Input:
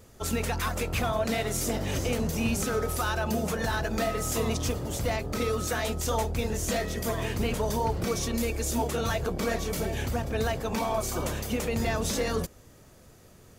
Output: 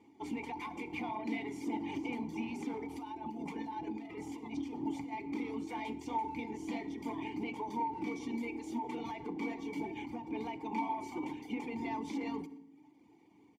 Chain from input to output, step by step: reverb removal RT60 0.8 s; de-hum 49.17 Hz, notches 8; 2.86–5.22 s: compressor with a negative ratio -33 dBFS, ratio -0.5; saturation -24 dBFS, distortion -17 dB; vowel filter u; comb of notches 1.3 kHz; speakerphone echo 120 ms, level -20 dB; reverberation RT60 0.80 s, pre-delay 3 ms, DRR 11.5 dB; endings held to a fixed fall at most 100 dB/s; trim +9 dB

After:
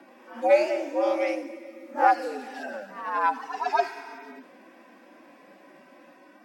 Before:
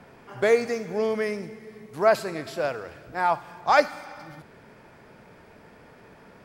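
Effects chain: harmonic-percussive separation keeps harmonic; ever faster or slower copies 82 ms, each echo +1 st, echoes 3, each echo -6 dB; frequency shift +110 Hz

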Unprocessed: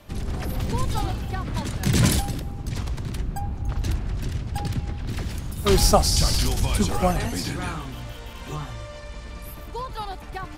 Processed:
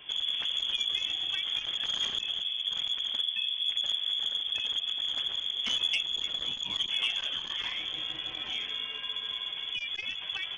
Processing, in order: compression 2.5:1, threshold -32 dBFS, peak gain reduction 14 dB; frequency inversion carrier 3.4 kHz; 6.18–6.76 s: distance through air 120 m; transformer saturation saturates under 2.2 kHz

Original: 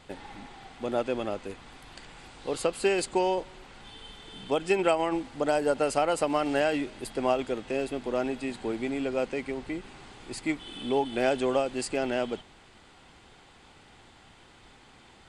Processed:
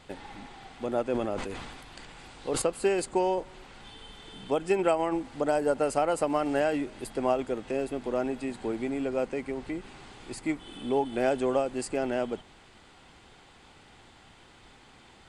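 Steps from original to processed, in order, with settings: dynamic bell 3.6 kHz, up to -7 dB, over -48 dBFS, Q 0.78; 1.08–2.62 s: decay stretcher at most 36 dB/s

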